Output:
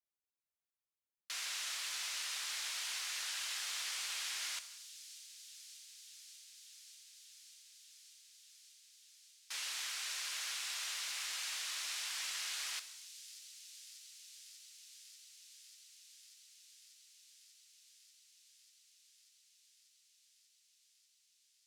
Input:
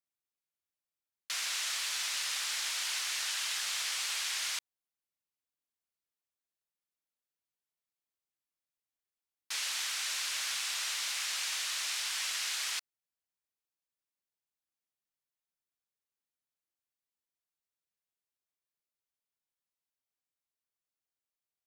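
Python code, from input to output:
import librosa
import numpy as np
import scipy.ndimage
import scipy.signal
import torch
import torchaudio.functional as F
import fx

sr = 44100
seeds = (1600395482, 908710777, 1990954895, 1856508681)

p1 = x + fx.echo_wet_highpass(x, sr, ms=590, feedback_pct=85, hz=4300.0, wet_db=-14.0, dry=0)
p2 = fx.rev_gated(p1, sr, seeds[0], gate_ms=340, shape='falling', drr_db=10.0)
y = F.gain(torch.from_numpy(p2), -6.5).numpy()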